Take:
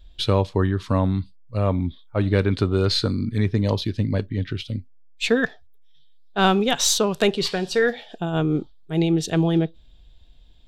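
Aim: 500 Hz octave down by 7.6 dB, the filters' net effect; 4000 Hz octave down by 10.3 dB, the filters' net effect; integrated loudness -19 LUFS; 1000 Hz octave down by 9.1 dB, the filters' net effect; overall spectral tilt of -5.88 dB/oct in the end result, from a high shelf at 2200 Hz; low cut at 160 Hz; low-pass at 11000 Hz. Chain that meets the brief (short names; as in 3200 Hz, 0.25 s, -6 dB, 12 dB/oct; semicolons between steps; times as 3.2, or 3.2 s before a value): HPF 160 Hz; LPF 11000 Hz; bell 500 Hz -7.5 dB; bell 1000 Hz -8 dB; high shelf 2200 Hz -7 dB; bell 4000 Hz -5.5 dB; gain +9.5 dB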